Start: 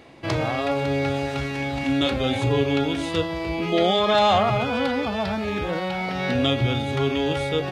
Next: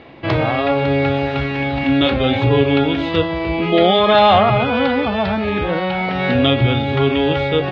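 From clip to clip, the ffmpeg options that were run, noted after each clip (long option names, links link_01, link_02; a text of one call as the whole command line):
ffmpeg -i in.wav -af "lowpass=frequency=3800:width=0.5412,lowpass=frequency=3800:width=1.3066,volume=7dB" out.wav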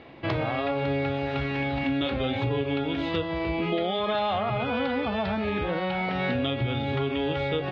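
ffmpeg -i in.wav -af "acompressor=threshold=-17dB:ratio=6,volume=-6.5dB" out.wav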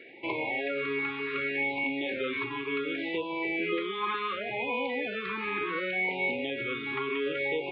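ffmpeg -i in.wav -filter_complex "[0:a]acrossover=split=2600[link_01][link_02];[link_02]acompressor=threshold=-43dB:ratio=4:attack=1:release=60[link_03];[link_01][link_03]amix=inputs=2:normalize=0,highpass=370,equalizer=frequency=390:width_type=q:width=4:gain=6,equalizer=frequency=670:width_type=q:width=4:gain=-10,equalizer=frequency=1100:width_type=q:width=4:gain=8,equalizer=frequency=2300:width_type=q:width=4:gain=9,lowpass=frequency=4000:width=0.5412,lowpass=frequency=4000:width=1.3066,afftfilt=real='re*(1-between(b*sr/1024,580*pow(1500/580,0.5+0.5*sin(2*PI*0.68*pts/sr))/1.41,580*pow(1500/580,0.5+0.5*sin(2*PI*0.68*pts/sr))*1.41))':imag='im*(1-between(b*sr/1024,580*pow(1500/580,0.5+0.5*sin(2*PI*0.68*pts/sr))/1.41,580*pow(1500/580,0.5+0.5*sin(2*PI*0.68*pts/sr))*1.41))':win_size=1024:overlap=0.75,volume=-2dB" out.wav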